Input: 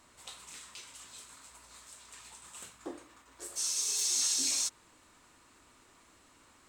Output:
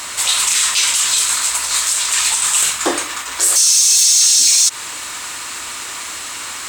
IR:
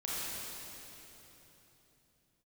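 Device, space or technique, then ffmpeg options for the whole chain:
mastering chain: -af "highpass=52,equalizer=frequency=240:width_type=o:width=0.97:gain=-3,acompressor=threshold=-35dB:ratio=3,asoftclip=type=tanh:threshold=-28.5dB,tiltshelf=frequency=930:gain=-8.5,alimiter=level_in=33dB:limit=-1dB:release=50:level=0:latency=1,volume=-3dB"

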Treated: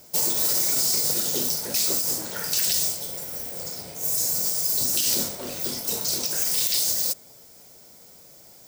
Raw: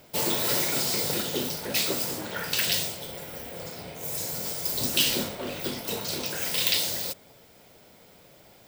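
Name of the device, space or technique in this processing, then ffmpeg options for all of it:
over-bright horn tweeter: -af "highshelf=frequency=4300:width_type=q:width=1.5:gain=10,alimiter=limit=-10.5dB:level=0:latency=1:release=69,volume=-1.5dB"

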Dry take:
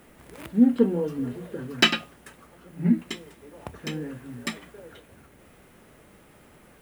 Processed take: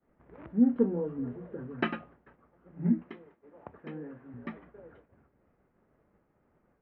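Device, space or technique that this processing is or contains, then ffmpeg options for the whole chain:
hearing-loss simulation: -filter_complex "[0:a]asettb=1/sr,asplit=3[link_01][link_02][link_03];[link_01]atrim=end=3.054[link_04];[link_02]atrim=start=3.05:end=4.34,asetpts=PTS-STARTPTS,afade=type=in:duration=0.004:curve=qsin,afade=type=out:start_time=1.286:duration=0.004:curve=qsin,highpass=frequency=250:poles=1[link_05];[link_03]atrim=start=4.336[link_06];[link_04][link_05]acrossfade=duration=0.004:curve1=hsin:curve2=qsin[link_07];[link_07][link_06]acrossfade=duration=0.004:curve1=qsin:curve2=hsin,lowpass=1500,agate=range=-33dB:threshold=-46dB:ratio=3:detection=peak,lowpass=2400,volume=-5.5dB"

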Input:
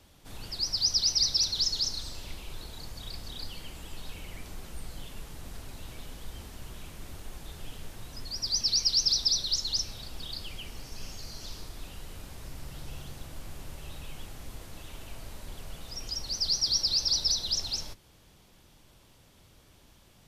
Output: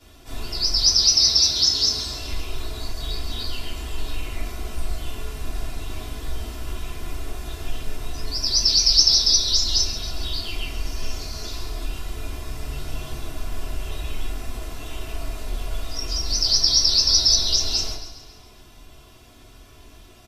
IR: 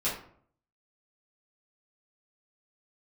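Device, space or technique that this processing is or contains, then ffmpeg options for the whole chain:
microphone above a desk: -filter_complex "[0:a]asettb=1/sr,asplit=3[link_01][link_02][link_03];[link_01]atrim=end=0.884[link_04];[link_02]atrim=start=0.88:end=2.21,asetpts=PTS-STARTPTS,afade=type=in:duration=0.004:curve=qsin,afade=type=out:start_time=1.326:duration=0.004:curve=qsin,highpass=66[link_05];[link_03]atrim=start=2.206[link_06];[link_04][link_05]acrossfade=duration=0.004:curve1=hsin:curve2=qsin[link_07];[link_07][link_06]acrossfade=duration=0.004:curve1=qsin:curve2=hsin,aecho=1:1:2.9:0.7[link_08];[1:a]atrim=start_sample=2205[link_09];[link_08][link_09]afir=irnorm=-1:irlink=0,aecho=1:1:137|274|411|548|685|822:0.224|0.121|0.0653|0.0353|0.019|0.0103,volume=1dB"

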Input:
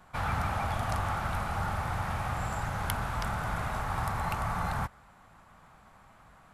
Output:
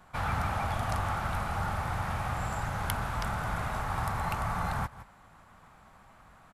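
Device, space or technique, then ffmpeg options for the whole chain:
ducked delay: -filter_complex "[0:a]asplit=3[link_01][link_02][link_03];[link_02]adelay=162,volume=-9dB[link_04];[link_03]apad=whole_len=295175[link_05];[link_04][link_05]sidechaincompress=threshold=-52dB:ratio=4:attack=49:release=144[link_06];[link_01][link_06]amix=inputs=2:normalize=0"

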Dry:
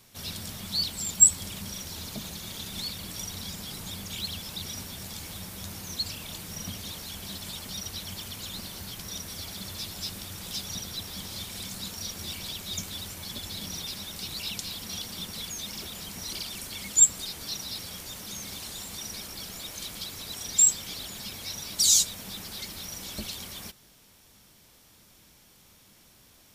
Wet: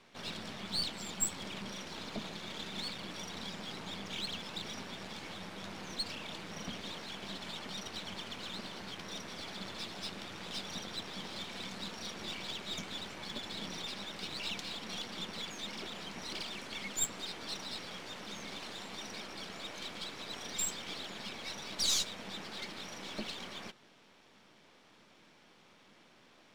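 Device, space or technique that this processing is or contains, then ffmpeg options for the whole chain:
crystal radio: -af "highpass=230,lowpass=2900,aeval=exprs='if(lt(val(0),0),0.447*val(0),val(0))':channel_layout=same,volume=4dB"

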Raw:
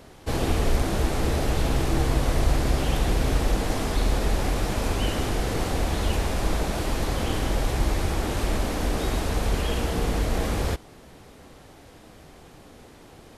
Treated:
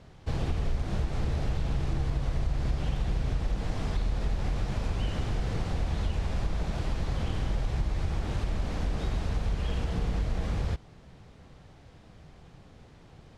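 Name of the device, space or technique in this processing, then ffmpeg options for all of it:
jukebox: -af "lowpass=5900,lowshelf=frequency=210:width_type=q:width=1.5:gain=6.5,acompressor=threshold=-17dB:ratio=4,volume=-7.5dB"

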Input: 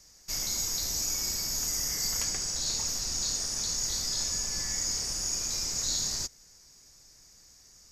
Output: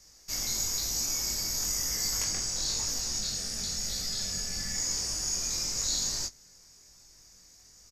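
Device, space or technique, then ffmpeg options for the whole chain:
double-tracked vocal: -filter_complex "[0:a]asettb=1/sr,asplit=3[link_01][link_02][link_03];[link_01]atrim=end=3.184[link_04];[link_02]atrim=start=3.18:end=4.75,asetpts=PTS-STARTPTS,afade=type=in:duration=0.004:curve=qsin,afade=type=out:start_time=1.566:duration=0.004:curve=qsin,equalizer=frequency=200:width_type=o:width=0.33:gain=7,equalizer=frequency=315:width_type=o:width=0.33:gain=-7,equalizer=frequency=1000:width_type=o:width=0.33:gain=-11,equalizer=frequency=6300:width_type=o:width=0.33:gain=-5[link_05];[link_03]atrim=start=4.746[link_06];[link_04][link_05]acrossfade=duration=0.004:curve1=hsin:curve2=qsin[link_07];[link_07][link_06]acrossfade=duration=0.004:curve1=qsin:curve2=hsin,asplit=2[link_08][link_09];[link_09]adelay=22,volume=-13.5dB[link_10];[link_08][link_10]amix=inputs=2:normalize=0,flanger=delay=18:depth=4.5:speed=1,volume=3dB"

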